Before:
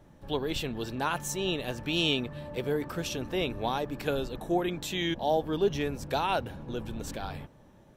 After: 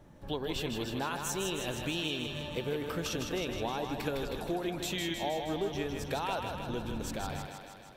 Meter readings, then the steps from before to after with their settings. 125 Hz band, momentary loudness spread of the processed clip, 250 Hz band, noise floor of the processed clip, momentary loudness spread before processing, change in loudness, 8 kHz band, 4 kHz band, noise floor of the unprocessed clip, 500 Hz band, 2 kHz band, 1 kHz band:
−3.0 dB, 4 LU, −3.5 dB, −51 dBFS, 10 LU, −4.0 dB, 0.0 dB, −3.5 dB, −56 dBFS, −4.5 dB, −3.0 dB, −4.5 dB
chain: downward compressor, threshold −31 dBFS, peak gain reduction 10.5 dB
on a send: feedback echo with a high-pass in the loop 157 ms, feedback 67%, high-pass 300 Hz, level −5 dB

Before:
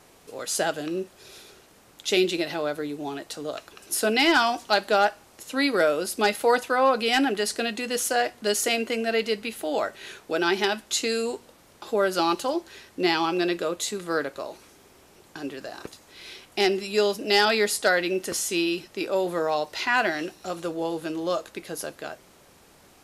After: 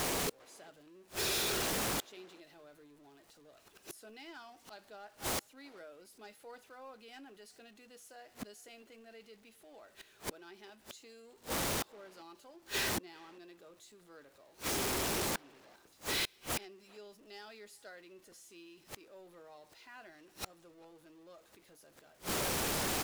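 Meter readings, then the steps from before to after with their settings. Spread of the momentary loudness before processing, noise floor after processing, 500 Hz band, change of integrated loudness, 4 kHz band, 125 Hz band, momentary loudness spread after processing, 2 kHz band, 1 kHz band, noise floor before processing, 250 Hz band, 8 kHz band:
15 LU, −65 dBFS, −19.5 dB, −11.0 dB, −12.0 dB, −6.0 dB, 22 LU, −16.0 dB, −17.5 dB, −55 dBFS, −17.5 dB, −8.0 dB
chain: converter with a step at zero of −29 dBFS
gate with flip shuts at −28 dBFS, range −32 dB
far-end echo of a speakerphone 400 ms, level −24 dB

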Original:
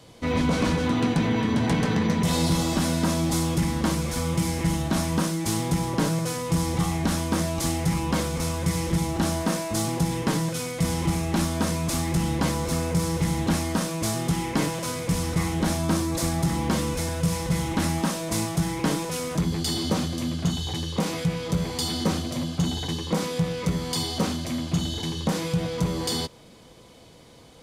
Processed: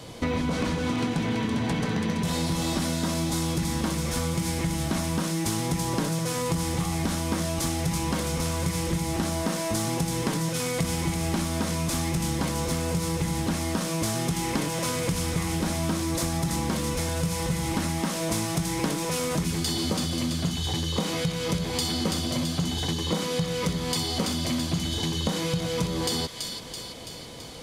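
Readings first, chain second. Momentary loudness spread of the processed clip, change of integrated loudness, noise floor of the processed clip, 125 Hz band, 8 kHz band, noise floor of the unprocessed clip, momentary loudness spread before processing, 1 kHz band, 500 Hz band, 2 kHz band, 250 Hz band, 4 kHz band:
1 LU, −1.5 dB, −36 dBFS, −2.5 dB, +0.5 dB, −50 dBFS, 4 LU, −2.0 dB, −1.0 dB, −1.0 dB, −2.5 dB, +1.0 dB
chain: downward compressor, threshold −33 dBFS, peak gain reduction 13.5 dB
on a send: delay with a high-pass on its return 332 ms, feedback 60%, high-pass 1,900 Hz, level −4 dB
on the sum: level +8 dB

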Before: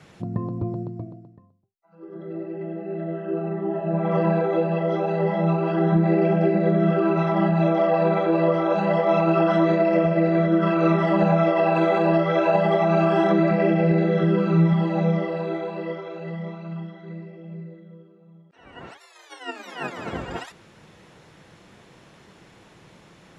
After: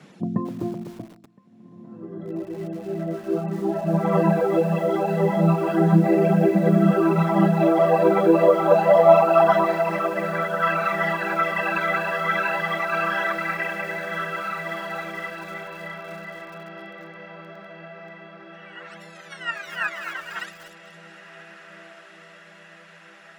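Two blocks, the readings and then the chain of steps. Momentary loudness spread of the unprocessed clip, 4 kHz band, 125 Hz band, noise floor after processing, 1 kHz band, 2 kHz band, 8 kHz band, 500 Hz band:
16 LU, +2.0 dB, −2.5 dB, −48 dBFS, +2.0 dB, +6.0 dB, can't be measured, +0.5 dB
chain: reverb reduction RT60 1.1 s
high-pass filter sweep 200 Hz → 1,600 Hz, 0:07.29–0:10.70
on a send: feedback delay with all-pass diffusion 1,682 ms, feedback 69%, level −14 dB
on the sum: dynamic equaliser 1,200 Hz, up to +5 dB, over −37 dBFS, Q 0.81
delay with a high-pass on its return 230 ms, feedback 59%, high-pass 3,400 Hz, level −8 dB
feedback echo at a low word length 244 ms, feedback 35%, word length 6 bits, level −13 dB

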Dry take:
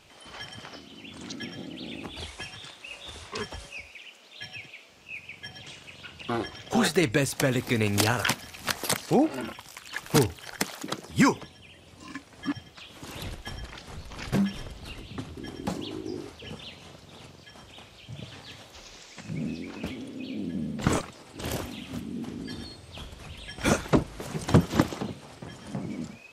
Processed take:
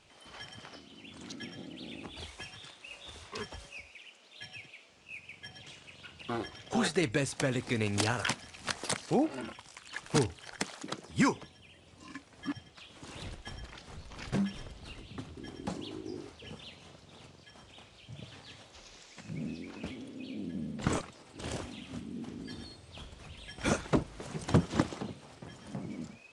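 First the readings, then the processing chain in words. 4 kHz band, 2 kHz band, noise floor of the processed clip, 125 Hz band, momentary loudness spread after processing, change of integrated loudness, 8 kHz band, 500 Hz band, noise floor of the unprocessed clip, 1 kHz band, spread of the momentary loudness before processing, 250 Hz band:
−6.0 dB, −6.0 dB, −58 dBFS, −6.0 dB, 20 LU, −6.0 dB, −6.5 dB, −6.0 dB, −52 dBFS, −6.0 dB, 20 LU, −6.0 dB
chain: level −6 dB
IMA ADPCM 88 kbit/s 22,050 Hz

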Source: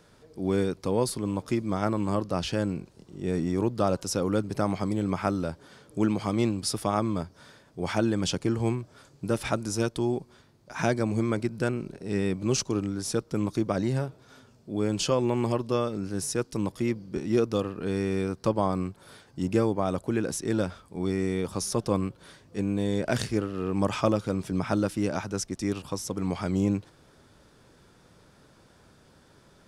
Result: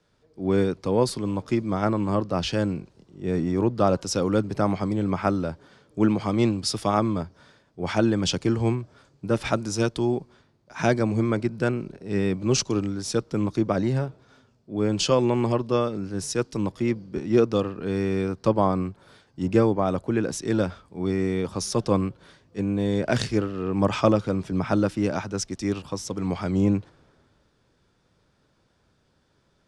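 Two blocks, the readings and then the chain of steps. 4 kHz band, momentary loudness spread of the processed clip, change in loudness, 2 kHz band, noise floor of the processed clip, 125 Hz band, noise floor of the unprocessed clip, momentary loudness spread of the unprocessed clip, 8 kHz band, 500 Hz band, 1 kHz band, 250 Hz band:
+4.0 dB, 9 LU, +3.5 dB, +3.0 dB, −66 dBFS, +3.5 dB, −58 dBFS, 7 LU, +1.5 dB, +4.0 dB, +3.5 dB, +3.5 dB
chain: Bessel low-pass filter 5,700 Hz, order 2
multiband upward and downward expander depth 40%
level +3.5 dB

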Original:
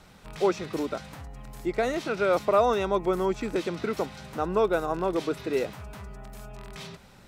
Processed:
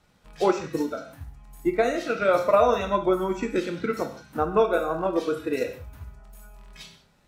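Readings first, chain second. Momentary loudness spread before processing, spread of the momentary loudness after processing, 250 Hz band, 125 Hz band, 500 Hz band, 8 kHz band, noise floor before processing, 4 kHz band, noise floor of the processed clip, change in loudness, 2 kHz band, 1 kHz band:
20 LU, 14 LU, +2.5 dB, 0.0 dB, +2.5 dB, can't be measured, −53 dBFS, +0.5 dB, −62 dBFS, +2.5 dB, +2.5 dB, +2.5 dB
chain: noise reduction from a noise print of the clip's start 12 dB
reverb whose tail is shaped and stops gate 210 ms falling, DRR 2.5 dB
transient designer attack +5 dB, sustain 0 dB

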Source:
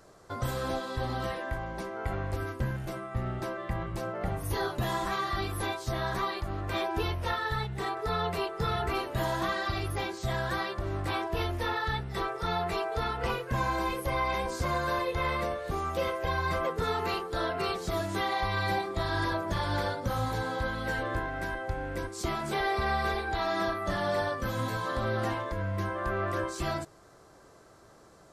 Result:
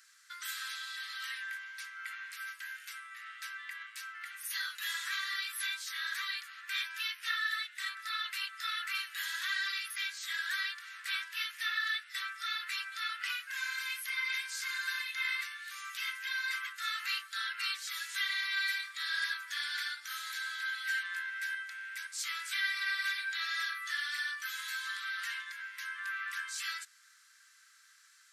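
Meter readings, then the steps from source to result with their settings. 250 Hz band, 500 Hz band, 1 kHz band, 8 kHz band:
below −40 dB, below −40 dB, −14.5 dB, +3.0 dB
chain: Butterworth high-pass 1,500 Hz 48 dB per octave
level +3 dB

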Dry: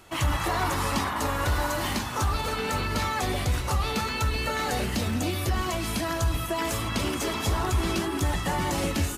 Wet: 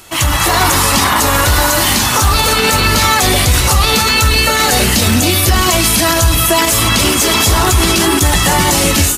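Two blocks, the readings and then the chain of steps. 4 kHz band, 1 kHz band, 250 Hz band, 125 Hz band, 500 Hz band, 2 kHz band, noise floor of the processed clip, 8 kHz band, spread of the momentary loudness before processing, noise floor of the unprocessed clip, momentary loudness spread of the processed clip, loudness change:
+20.5 dB, +15.0 dB, +14.0 dB, +13.5 dB, +14.0 dB, +17.0 dB, −14 dBFS, +22.5 dB, 2 LU, −31 dBFS, 1 LU, +17.0 dB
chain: high-shelf EQ 3,100 Hz +11.5 dB
automatic gain control
boost into a limiter +10 dB
level −1 dB

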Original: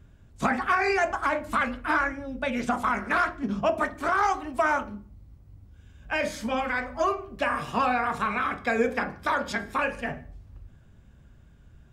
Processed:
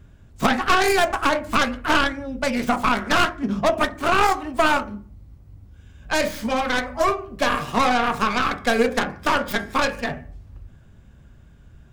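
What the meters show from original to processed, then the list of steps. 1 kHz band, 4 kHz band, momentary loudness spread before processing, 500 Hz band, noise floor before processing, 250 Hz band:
+5.0 dB, +14.0 dB, 6 LU, +5.5 dB, −54 dBFS, +6.5 dB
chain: stylus tracing distortion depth 0.22 ms
level +5 dB

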